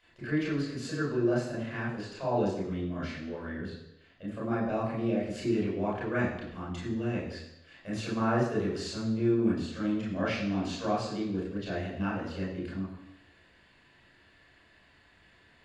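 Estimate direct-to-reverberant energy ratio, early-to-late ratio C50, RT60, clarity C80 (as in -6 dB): -7.0 dB, 3.0 dB, 0.85 s, 6.0 dB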